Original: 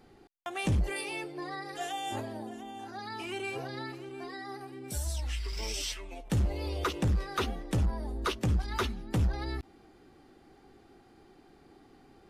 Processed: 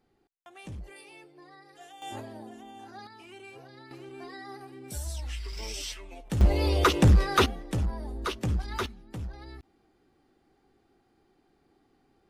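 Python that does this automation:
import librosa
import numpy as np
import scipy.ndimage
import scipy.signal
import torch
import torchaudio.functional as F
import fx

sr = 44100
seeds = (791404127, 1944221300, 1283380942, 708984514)

y = fx.gain(x, sr, db=fx.steps((0.0, -13.5), (2.02, -3.5), (3.07, -11.0), (3.91, -1.5), (6.41, 9.5), (7.46, -0.5), (8.86, -9.5)))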